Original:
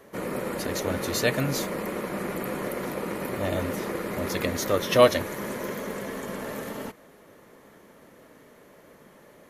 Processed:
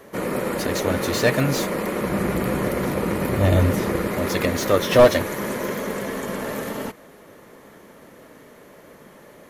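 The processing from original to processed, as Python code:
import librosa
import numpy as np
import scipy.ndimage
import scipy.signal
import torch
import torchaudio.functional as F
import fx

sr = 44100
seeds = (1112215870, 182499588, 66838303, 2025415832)

y = fx.peak_eq(x, sr, hz=68.0, db=13.0, octaves=2.2, at=(2.01, 4.08))
y = fx.slew_limit(y, sr, full_power_hz=150.0)
y = y * librosa.db_to_amplitude(6.0)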